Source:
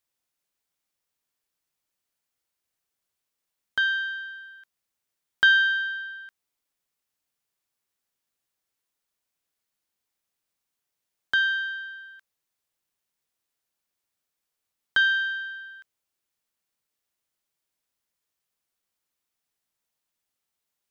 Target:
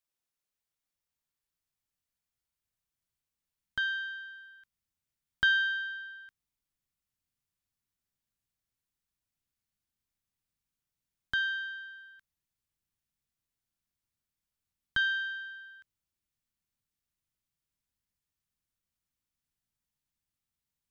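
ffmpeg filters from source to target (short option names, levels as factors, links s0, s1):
-af "asubboost=boost=6:cutoff=190,volume=0.447"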